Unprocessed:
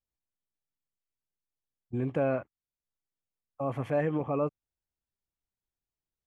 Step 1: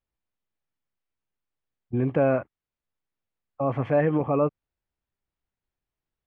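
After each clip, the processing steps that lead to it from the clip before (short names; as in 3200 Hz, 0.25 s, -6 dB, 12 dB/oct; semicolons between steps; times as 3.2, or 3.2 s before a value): LPF 2800 Hz 12 dB/oct; gain +6.5 dB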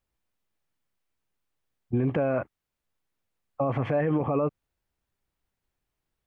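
limiter -22.5 dBFS, peak gain reduction 11 dB; gain +5.5 dB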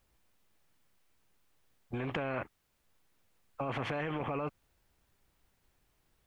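spectral compressor 2:1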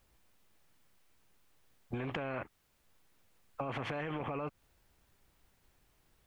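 compressor 4:1, threshold -38 dBFS, peak gain reduction 6.5 dB; gain +3 dB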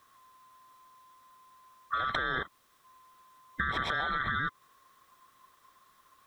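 band-swap scrambler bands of 1000 Hz; gain +6.5 dB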